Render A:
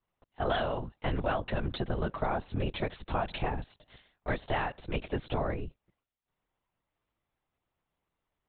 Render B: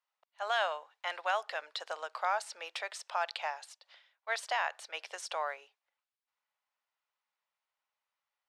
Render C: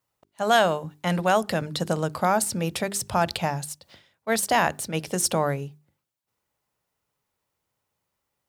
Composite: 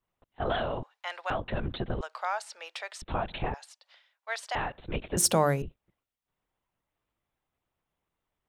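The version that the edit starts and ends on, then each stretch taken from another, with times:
A
0.83–1.3 from B
2.01–3.02 from B
3.54–4.55 from B
5.17–5.62 from C

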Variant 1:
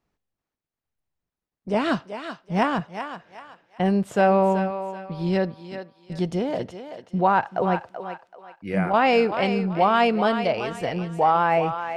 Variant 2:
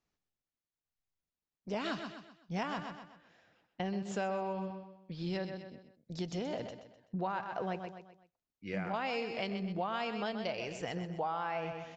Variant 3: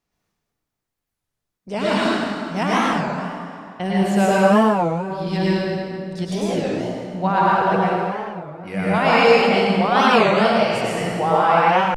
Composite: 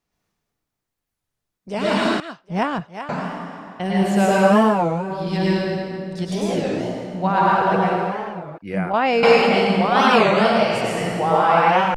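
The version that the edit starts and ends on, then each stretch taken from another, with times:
3
2.2–3.09 from 1
8.58–9.23 from 1
not used: 2

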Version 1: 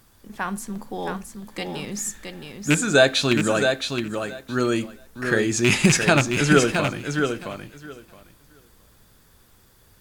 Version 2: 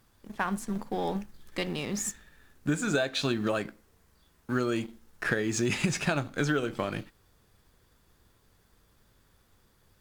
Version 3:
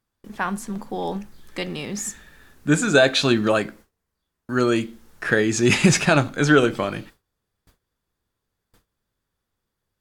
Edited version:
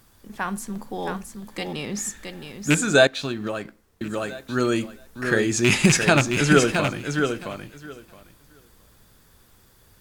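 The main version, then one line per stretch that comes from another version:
1
1.73–2.17 from 3
3.07–4.01 from 2

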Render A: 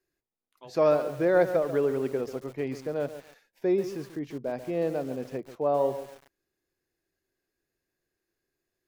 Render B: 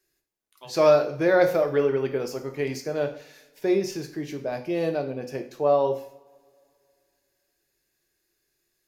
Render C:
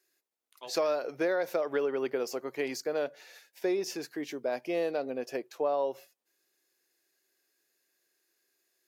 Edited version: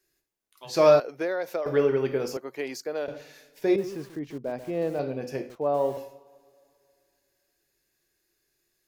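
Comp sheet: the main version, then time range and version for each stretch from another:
B
1–1.66 from C
2.37–3.08 from C
3.76–4.99 from A
5.5–5.97 from A

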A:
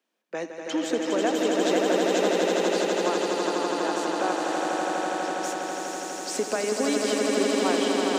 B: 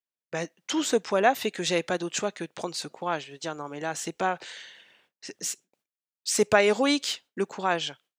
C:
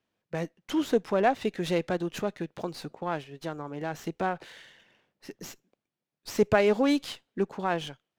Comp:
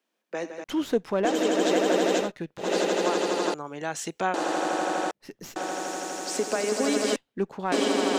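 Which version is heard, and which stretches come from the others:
A
0.64–1.25 from C
2.24–2.65 from C, crossfade 0.16 s
3.54–4.34 from B
5.11–5.56 from C
7.16–7.72 from C

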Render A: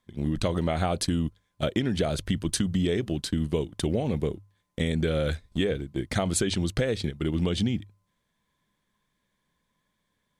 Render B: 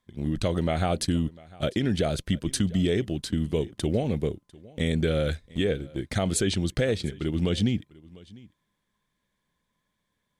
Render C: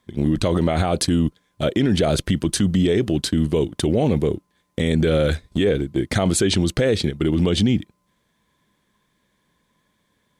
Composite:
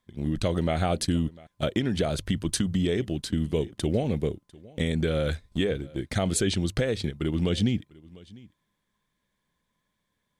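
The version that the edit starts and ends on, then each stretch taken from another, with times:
B
1.47–3 from A
4.78–5.83 from A
6.66–7.45 from A
not used: C

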